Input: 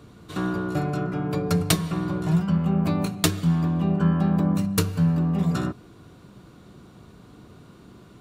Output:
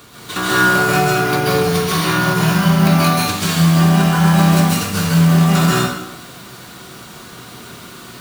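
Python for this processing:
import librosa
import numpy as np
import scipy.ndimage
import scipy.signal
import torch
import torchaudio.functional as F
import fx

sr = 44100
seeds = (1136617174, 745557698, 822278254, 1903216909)

y = 10.0 ** (-10.5 / 20.0) * np.tanh(x / 10.0 ** (-10.5 / 20.0))
y = fx.tilt_shelf(y, sr, db=-9.0, hz=650.0)
y = fx.over_compress(y, sr, threshold_db=-27.0, ratio=-0.5)
y = fx.quant_companded(y, sr, bits=4)
y = fx.notch(y, sr, hz=7700.0, q=5.1, at=(0.98, 3.12))
y = fx.rev_plate(y, sr, seeds[0], rt60_s=0.81, hf_ratio=0.95, predelay_ms=120, drr_db=-6.0)
y = y * 10.0 ** (5.5 / 20.0)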